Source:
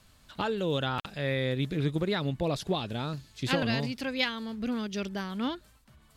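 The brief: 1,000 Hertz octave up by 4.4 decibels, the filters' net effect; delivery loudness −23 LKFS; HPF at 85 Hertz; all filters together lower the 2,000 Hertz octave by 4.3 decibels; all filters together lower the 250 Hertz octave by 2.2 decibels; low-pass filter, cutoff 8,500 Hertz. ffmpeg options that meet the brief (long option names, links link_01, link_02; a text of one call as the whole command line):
ffmpeg -i in.wav -af "highpass=85,lowpass=8500,equalizer=frequency=250:width_type=o:gain=-3,equalizer=frequency=1000:width_type=o:gain=8,equalizer=frequency=2000:width_type=o:gain=-8.5,volume=9dB" out.wav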